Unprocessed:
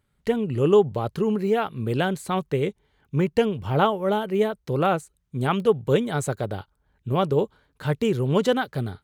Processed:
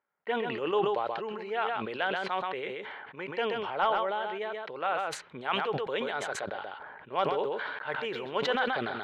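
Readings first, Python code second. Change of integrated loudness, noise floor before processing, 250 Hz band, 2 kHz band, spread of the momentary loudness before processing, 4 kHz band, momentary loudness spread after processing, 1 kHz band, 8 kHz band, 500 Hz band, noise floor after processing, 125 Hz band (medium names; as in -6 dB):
-8.0 dB, -71 dBFS, -15.0 dB, +0.5 dB, 8 LU, -1.5 dB, 9 LU, -2.5 dB, -7.5 dB, -9.0 dB, -51 dBFS, -22.0 dB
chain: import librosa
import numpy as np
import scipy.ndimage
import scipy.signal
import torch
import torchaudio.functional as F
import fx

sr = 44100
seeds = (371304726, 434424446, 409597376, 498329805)

p1 = fx.env_lowpass(x, sr, base_hz=1300.0, full_db=-19.5)
p2 = scipy.signal.sosfilt(scipy.signal.butter(2, 930.0, 'highpass', fs=sr, output='sos'), p1)
p3 = fx.peak_eq(p2, sr, hz=1200.0, db=-4.5, octaves=0.24)
p4 = fx.rider(p3, sr, range_db=4, speed_s=2.0)
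p5 = np.clip(10.0 ** (16.5 / 20.0) * p4, -1.0, 1.0) / 10.0 ** (16.5 / 20.0)
p6 = fx.air_absorb(p5, sr, metres=320.0)
p7 = p6 + fx.echo_single(p6, sr, ms=130, db=-9.5, dry=0)
y = fx.sustainer(p7, sr, db_per_s=27.0)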